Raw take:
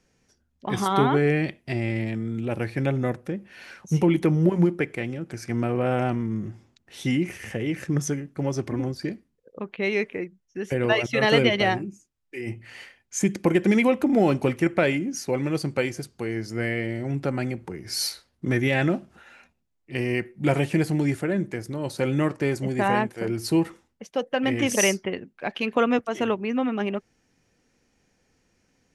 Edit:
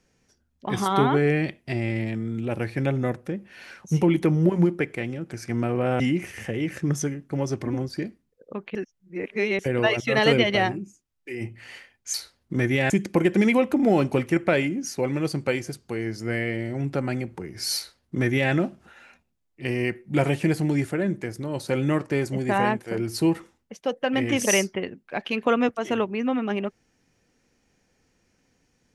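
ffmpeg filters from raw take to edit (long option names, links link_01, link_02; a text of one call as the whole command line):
ffmpeg -i in.wav -filter_complex "[0:a]asplit=6[link_01][link_02][link_03][link_04][link_05][link_06];[link_01]atrim=end=6.002[link_07];[link_02]atrim=start=7.058:end=9.812[link_08];[link_03]atrim=start=9.808:end=10.652,asetpts=PTS-STARTPTS,areverse[link_09];[link_04]atrim=start=10.648:end=13.202[link_10];[link_05]atrim=start=18.058:end=18.822[link_11];[link_06]atrim=start=13.198[link_12];[link_07][link_08]acrossfade=duration=0.004:curve1=hsin:curve2=hsin[link_13];[link_13][link_09]acrossfade=duration=0.004:curve1=hsin:curve2=hsin[link_14];[link_14][link_10]acrossfade=duration=0.004:curve1=hsin:curve2=hsin[link_15];[link_15][link_11]acrossfade=duration=0.004:curve1=hsin:curve2=hsin[link_16];[link_16][link_12]acrossfade=duration=0.004:curve1=hsin:curve2=hsin" out.wav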